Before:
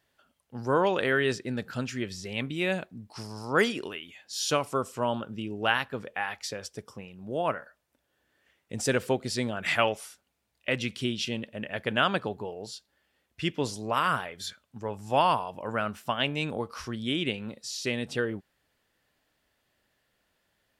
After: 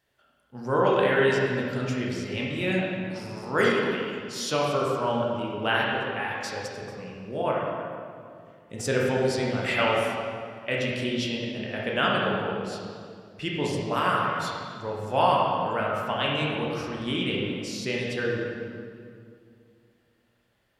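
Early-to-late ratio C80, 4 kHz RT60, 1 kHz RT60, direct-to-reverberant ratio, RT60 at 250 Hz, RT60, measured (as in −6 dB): 1.0 dB, 1.7 s, 2.1 s, −4.0 dB, 2.7 s, 2.3 s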